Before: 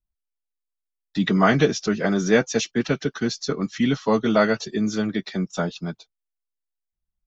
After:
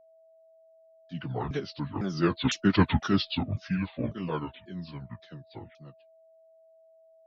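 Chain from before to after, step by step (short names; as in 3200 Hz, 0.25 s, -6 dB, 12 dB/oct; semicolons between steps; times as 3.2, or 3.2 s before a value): repeated pitch sweeps -11.5 st, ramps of 0.524 s; Doppler pass-by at 2.94, 14 m/s, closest 2.6 m; whine 650 Hz -61 dBFS; gain +5 dB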